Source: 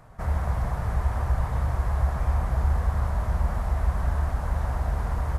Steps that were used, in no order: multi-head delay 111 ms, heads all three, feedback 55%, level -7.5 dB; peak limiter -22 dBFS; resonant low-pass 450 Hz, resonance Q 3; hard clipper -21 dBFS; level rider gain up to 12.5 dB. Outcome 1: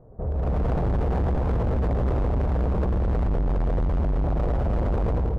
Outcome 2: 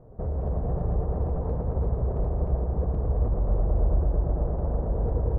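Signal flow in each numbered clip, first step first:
resonant low-pass > peak limiter > multi-head delay > level rider > hard clipper; level rider > peak limiter > resonant low-pass > hard clipper > multi-head delay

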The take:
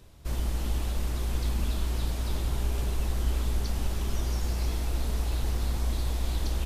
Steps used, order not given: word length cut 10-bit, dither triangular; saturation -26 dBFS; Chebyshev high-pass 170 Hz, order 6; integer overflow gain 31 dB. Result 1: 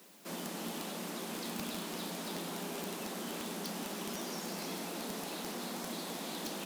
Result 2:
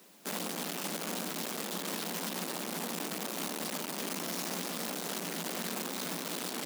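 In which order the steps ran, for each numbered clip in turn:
word length cut > Chebyshev high-pass > saturation > integer overflow; saturation > integer overflow > word length cut > Chebyshev high-pass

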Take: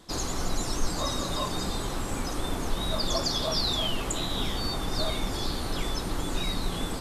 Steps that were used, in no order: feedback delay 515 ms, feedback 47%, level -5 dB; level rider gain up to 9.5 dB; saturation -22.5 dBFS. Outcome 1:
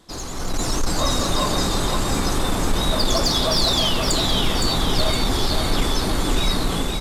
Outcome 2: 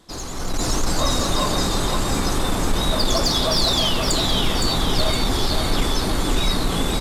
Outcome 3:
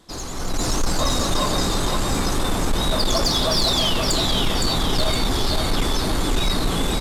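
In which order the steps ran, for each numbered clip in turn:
saturation > level rider > feedback delay; saturation > feedback delay > level rider; feedback delay > saturation > level rider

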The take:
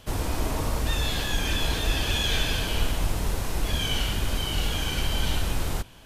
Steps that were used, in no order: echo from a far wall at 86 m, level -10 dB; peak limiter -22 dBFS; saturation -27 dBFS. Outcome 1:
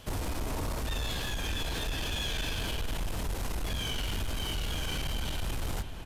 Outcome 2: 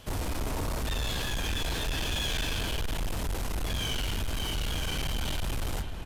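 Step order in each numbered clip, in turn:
peak limiter > echo from a far wall > saturation; echo from a far wall > saturation > peak limiter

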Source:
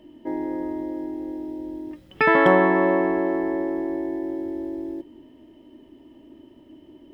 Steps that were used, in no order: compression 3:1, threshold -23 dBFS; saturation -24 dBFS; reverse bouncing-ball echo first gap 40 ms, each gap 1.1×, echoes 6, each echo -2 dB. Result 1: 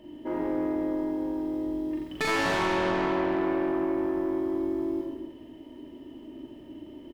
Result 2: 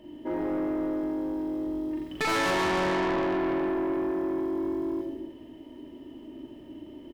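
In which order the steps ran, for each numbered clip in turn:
saturation > reverse bouncing-ball echo > compression; reverse bouncing-ball echo > saturation > compression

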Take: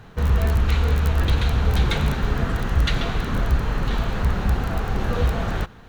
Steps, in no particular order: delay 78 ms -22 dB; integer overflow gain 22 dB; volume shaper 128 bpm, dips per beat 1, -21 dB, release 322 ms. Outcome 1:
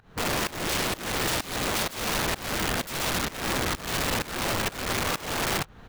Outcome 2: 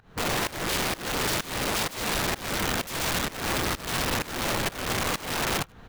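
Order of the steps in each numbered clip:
delay > integer overflow > volume shaper; integer overflow > delay > volume shaper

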